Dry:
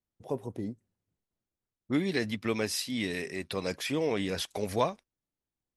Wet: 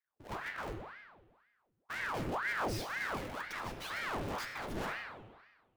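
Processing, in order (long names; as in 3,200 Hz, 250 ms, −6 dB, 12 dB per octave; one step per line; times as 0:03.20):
each half-wave held at its own peak
high-shelf EQ 2,900 Hz −7.5 dB
in parallel at −1 dB: speech leveller within 3 dB
on the sum: hard clipping −26 dBFS, distortion −5 dB
tuned comb filter 110 Hz, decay 0.46 s, harmonics all, mix 70%
on a send: feedback echo with a high-pass in the loop 98 ms, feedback 49%, level −17 dB
on the sum: spring reverb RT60 1.4 s, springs 32 ms, chirp 80 ms, DRR 3.5 dB
ring modulator whose carrier an LFO sweeps 1,000 Hz, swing 90%, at 2 Hz
level −3 dB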